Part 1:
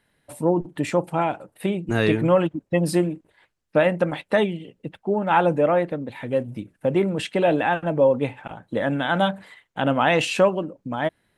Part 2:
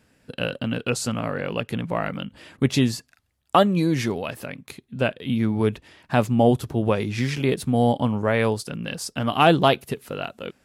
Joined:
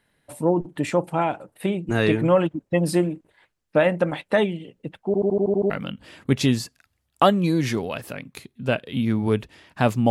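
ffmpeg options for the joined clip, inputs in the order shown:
-filter_complex "[0:a]apad=whole_dur=10.1,atrim=end=10.1,asplit=8[s0][s1][s2][s3][s4][s5][s6][s7];[s0]atrim=end=5.142[s8];[s1]atrim=start=5.058:end=5.142[s9];[s2]atrim=start=5.058:end=5.142[s10];[s3]atrim=start=5.058:end=5.142[s11];[s4]atrim=start=5.058:end=5.142[s12];[s5]atrim=start=5.058:end=5.142[s13];[s6]atrim=start=5.058:end=5.142[s14];[s7]atrim=start=5.058:end=5.142[s15];[1:a]atrim=start=2.028:end=6.43[s16];[s8][s9]acrossfade=d=0.004:c1=hsin:c2=hsin[s17];[s17][s10]acrossfade=d=0.004:c1=hsin:c2=hsin[s18];[s18][s11]acrossfade=d=0.004:c1=hsin:c2=hsin[s19];[s19][s12]acrossfade=d=0.004:c1=hsin:c2=hsin[s20];[s20][s13]acrossfade=d=0.004:c1=hsin:c2=hsin[s21];[s21][s14]acrossfade=d=0.004:c1=hsin:c2=hsin[s22];[s22][s15]acrossfade=d=0.004:c1=hsin:c2=hsin[s23];[s23][s16]acrossfade=d=0.004:c1=hsin:c2=hsin"

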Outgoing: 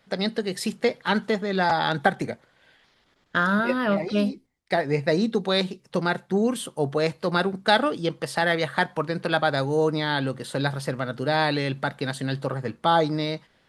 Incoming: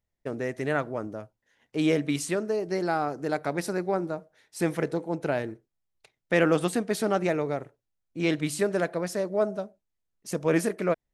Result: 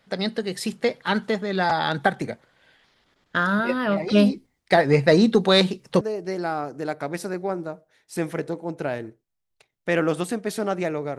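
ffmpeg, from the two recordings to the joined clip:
-filter_complex "[0:a]asplit=3[s0][s1][s2];[s0]afade=t=out:st=4.07:d=0.02[s3];[s1]acontrast=66,afade=t=in:st=4.07:d=0.02,afade=t=out:st=6.01:d=0.02[s4];[s2]afade=t=in:st=6.01:d=0.02[s5];[s3][s4][s5]amix=inputs=3:normalize=0,apad=whole_dur=11.18,atrim=end=11.18,atrim=end=6.012[s6];[1:a]atrim=start=2.448:end=7.62[s7];[s6][s7]acrossfade=d=0.004:c1=hsin:c2=hsin"

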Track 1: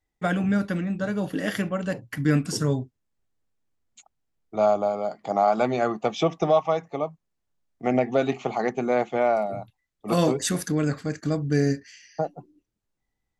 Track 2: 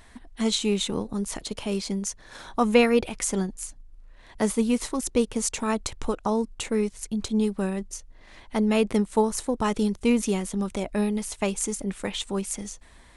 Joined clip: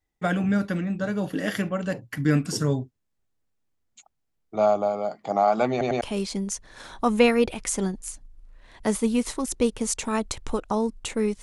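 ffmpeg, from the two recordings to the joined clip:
-filter_complex "[0:a]apad=whole_dur=11.42,atrim=end=11.42,asplit=3[s0][s1][s2];[s0]atrim=end=5.812[s3];[s1]atrim=start=5.708:end=5.812[s4];[s2]atrim=start=5.708:end=5.812[s5];[1:a]atrim=start=1.558:end=6.97[s6];[s3][s4]acrossfade=d=0.004:c1=hsin:c2=hsin[s7];[s7][s5]acrossfade=d=0.004:c1=hsin:c2=hsin[s8];[s8][s6]acrossfade=d=0.004:c1=hsin:c2=hsin"

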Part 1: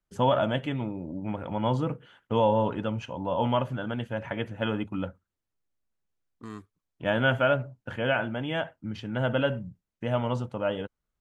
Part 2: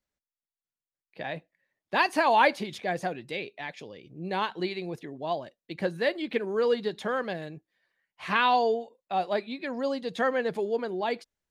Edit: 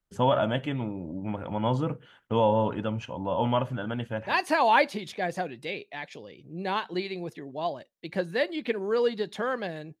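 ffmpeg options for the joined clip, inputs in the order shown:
-filter_complex "[0:a]apad=whole_dur=10,atrim=end=10,atrim=end=4.4,asetpts=PTS-STARTPTS[s0];[1:a]atrim=start=1.82:end=7.66,asetpts=PTS-STARTPTS[s1];[s0][s1]acrossfade=d=0.24:c1=tri:c2=tri"

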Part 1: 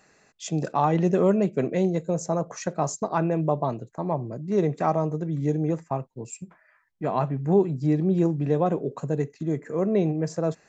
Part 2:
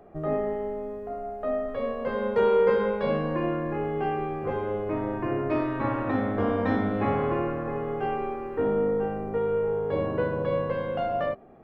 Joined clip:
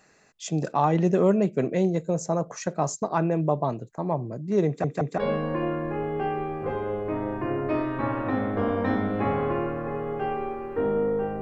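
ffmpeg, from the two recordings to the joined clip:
-filter_complex "[0:a]apad=whole_dur=11.41,atrim=end=11.41,asplit=3[s0][s1][s2];[s0]atrim=end=4.842[s3];[s1]atrim=start=4.668:end=4.842[s4];[s2]atrim=start=4.668:end=4.842[s5];[1:a]atrim=start=2.988:end=9.22[s6];[s3][s4]acrossfade=d=0.004:c1=hsin:c2=hsin[s7];[s7][s5]acrossfade=d=0.004:c1=hsin:c2=hsin[s8];[s8][s6]acrossfade=d=0.004:c1=hsin:c2=hsin"

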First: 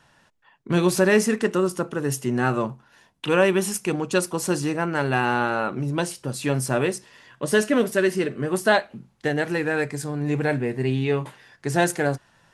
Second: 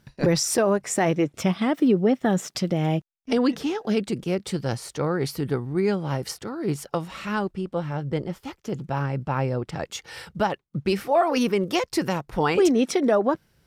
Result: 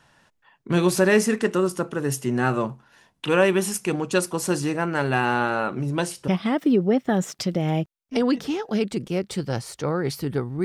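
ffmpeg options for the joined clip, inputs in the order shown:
-filter_complex "[0:a]apad=whole_dur=10.64,atrim=end=10.64,atrim=end=6.282[s0];[1:a]atrim=start=1.438:end=5.8[s1];[s0][s1]acrossfade=d=0.004:c1=hsin:c2=hsin"

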